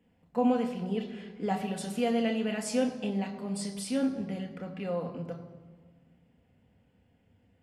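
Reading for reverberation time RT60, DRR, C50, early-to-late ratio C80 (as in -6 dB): 1.5 s, 3.0 dB, 10.0 dB, 11.0 dB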